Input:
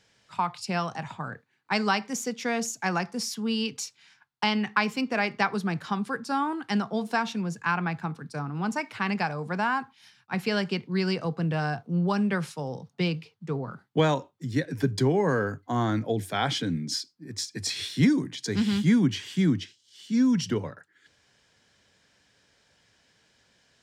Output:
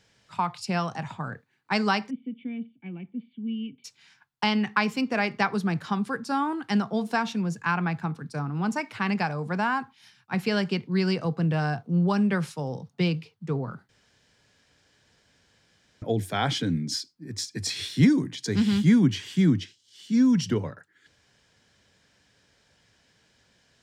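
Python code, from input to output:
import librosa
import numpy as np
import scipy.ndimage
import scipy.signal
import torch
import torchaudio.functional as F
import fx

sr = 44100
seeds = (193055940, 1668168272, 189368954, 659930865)

y = fx.formant_cascade(x, sr, vowel='i', at=(2.09, 3.84), fade=0.02)
y = fx.edit(y, sr, fx.room_tone_fill(start_s=13.89, length_s=2.13), tone=tone)
y = fx.low_shelf(y, sr, hz=230.0, db=4.5)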